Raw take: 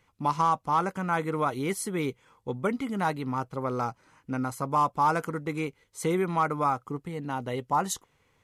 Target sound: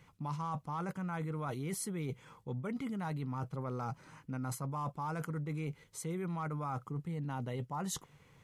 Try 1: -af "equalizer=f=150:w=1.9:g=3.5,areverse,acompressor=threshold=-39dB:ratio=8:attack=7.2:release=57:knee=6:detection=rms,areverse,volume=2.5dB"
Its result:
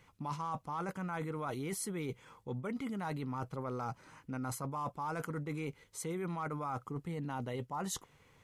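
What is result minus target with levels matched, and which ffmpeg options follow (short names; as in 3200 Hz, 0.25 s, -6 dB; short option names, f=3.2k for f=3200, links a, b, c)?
125 Hz band -3.0 dB
-af "equalizer=f=150:w=1.9:g=11,areverse,acompressor=threshold=-39dB:ratio=8:attack=7.2:release=57:knee=6:detection=rms,areverse,volume=2.5dB"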